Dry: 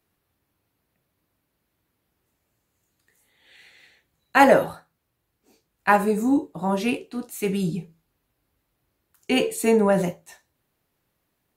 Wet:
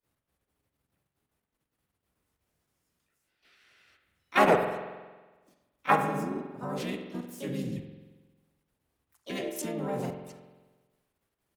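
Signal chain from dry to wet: level held to a coarse grid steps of 15 dB; harmony voices -5 st 0 dB, +5 st -2 dB, +7 st -16 dB; spring tank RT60 1.3 s, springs 45 ms, chirp 25 ms, DRR 6 dB; trim -8 dB

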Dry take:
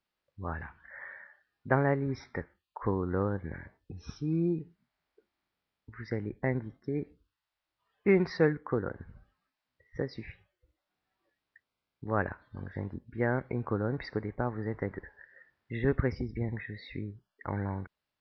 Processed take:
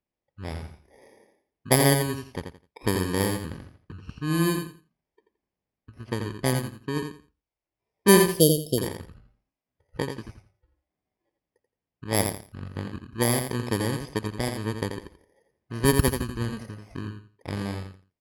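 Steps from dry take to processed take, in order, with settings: bit-reversed sample order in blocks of 32 samples; Chebyshev shaper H 7 -23 dB, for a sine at -11 dBFS; spectral selection erased 8.34–8.78 s, 720–2700 Hz; level-controlled noise filter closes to 2.5 kHz, open at -27.5 dBFS; on a send: feedback delay 85 ms, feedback 22%, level -6.5 dB; on the sum: trim +8.5 dB

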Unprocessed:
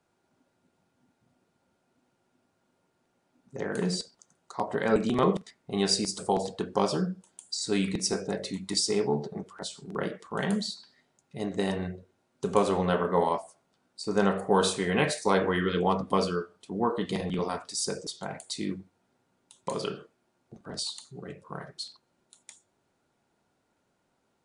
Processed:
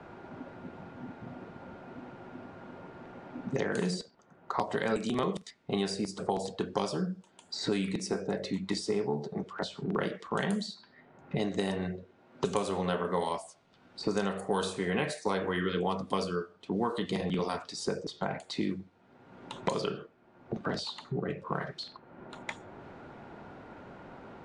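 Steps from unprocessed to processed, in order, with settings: level-controlled noise filter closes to 2 kHz, open at -23.5 dBFS; three bands compressed up and down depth 100%; trim -3.5 dB

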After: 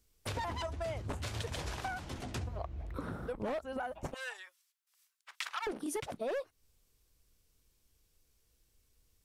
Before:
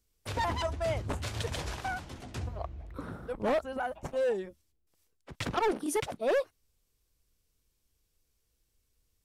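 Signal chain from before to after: 4.14–5.67 s: high-pass 1.1 kHz 24 dB/octave; compression 6:1, threshold -39 dBFS, peak gain reduction 12.5 dB; trim +3.5 dB

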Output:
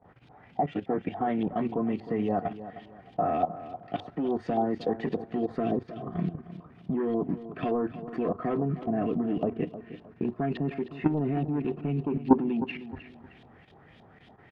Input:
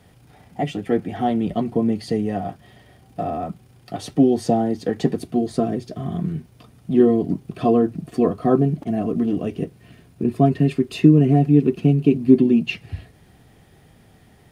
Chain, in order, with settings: bass shelf 110 Hz -10.5 dB; saturation -10.5 dBFS, distortion -15 dB; level held to a coarse grid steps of 14 dB; LFO low-pass saw up 3.5 Hz 750–3800 Hz; on a send: feedback delay 310 ms, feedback 30%, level -13.5 dB

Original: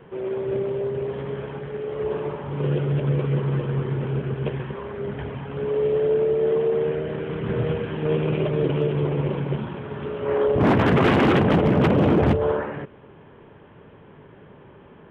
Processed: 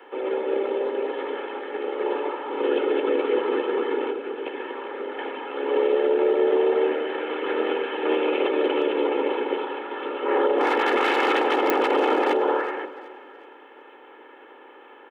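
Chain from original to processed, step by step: spectral peaks clipped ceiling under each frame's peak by 14 dB; comb 2.3 ms, depth 68%; echo whose repeats swap between lows and highs 187 ms, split 1 kHz, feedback 59%, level -12.5 dB; 4.10–5.19 s: compression, threshold -25 dBFS, peak gain reduction 7 dB; steep high-pass 230 Hz 96 dB/octave; peak limiter -11 dBFS, peak gain reduction 7 dB; clicks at 11.70 s, -5 dBFS; trim -1 dB

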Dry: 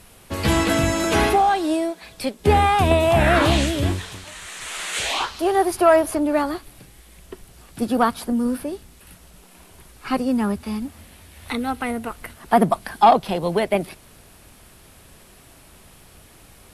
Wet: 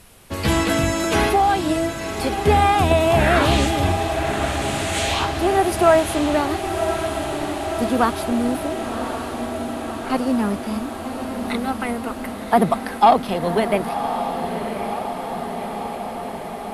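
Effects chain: 8.67–10.10 s: distance through air 410 m; echo that smears into a reverb 1088 ms, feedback 73%, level -7.5 dB

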